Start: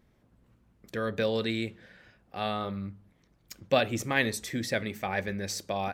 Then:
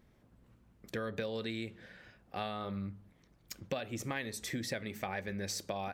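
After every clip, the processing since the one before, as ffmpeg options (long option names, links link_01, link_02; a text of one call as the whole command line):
ffmpeg -i in.wav -af "acompressor=threshold=-34dB:ratio=10" out.wav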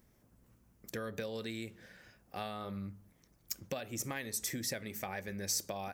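ffmpeg -i in.wav -af "aexciter=amount=3.7:drive=3.3:freq=5200,volume=-2.5dB" out.wav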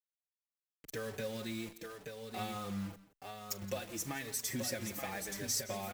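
ffmpeg -i in.wav -filter_complex "[0:a]acrusher=bits=7:mix=0:aa=0.000001,asplit=2[link_01][link_02];[link_02]aecho=0:1:40|170|877:0.106|0.141|0.501[link_03];[link_01][link_03]amix=inputs=2:normalize=0,asplit=2[link_04][link_05];[link_05]adelay=4.8,afreqshift=-0.9[link_06];[link_04][link_06]amix=inputs=2:normalize=1,volume=2dB" out.wav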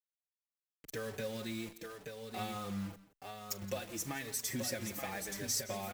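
ffmpeg -i in.wav -af anull out.wav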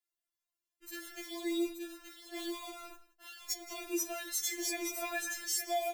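ffmpeg -i in.wav -af "afftfilt=real='re*4*eq(mod(b,16),0)':imag='im*4*eq(mod(b,16),0)':win_size=2048:overlap=0.75,volume=5.5dB" out.wav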